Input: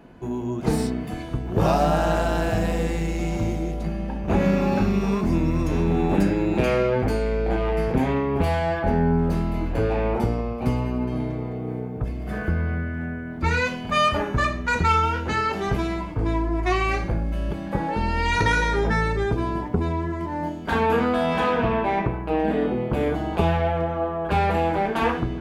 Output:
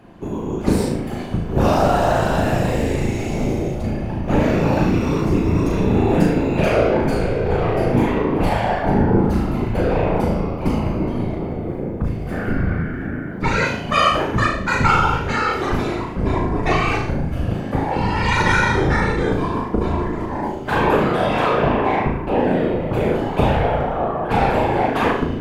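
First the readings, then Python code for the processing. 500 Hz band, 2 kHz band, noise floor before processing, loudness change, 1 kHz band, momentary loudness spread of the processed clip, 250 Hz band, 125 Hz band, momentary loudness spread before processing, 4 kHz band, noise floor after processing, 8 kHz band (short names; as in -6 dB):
+4.5 dB, +4.5 dB, -32 dBFS, +4.0 dB, +4.5 dB, 8 LU, +4.5 dB, +4.0 dB, 8 LU, +4.5 dB, -27 dBFS, +4.0 dB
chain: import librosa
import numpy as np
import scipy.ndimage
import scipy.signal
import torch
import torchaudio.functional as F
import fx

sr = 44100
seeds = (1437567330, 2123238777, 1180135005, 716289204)

y = fx.whisperise(x, sr, seeds[0])
y = fx.room_flutter(y, sr, wall_m=6.3, rt60_s=0.47)
y = F.gain(torch.from_numpy(y), 2.5).numpy()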